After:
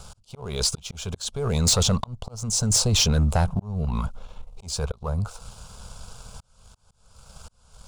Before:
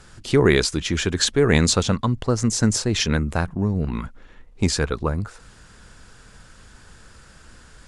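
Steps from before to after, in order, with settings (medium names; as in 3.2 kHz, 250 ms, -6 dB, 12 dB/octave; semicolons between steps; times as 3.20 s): in parallel at +3 dB: compressor with a negative ratio -21 dBFS, ratio -0.5; on the sum: slow attack 545 ms; waveshaping leveller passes 1; static phaser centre 760 Hz, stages 4; saturation -9 dBFS, distortion -17 dB; trim -4 dB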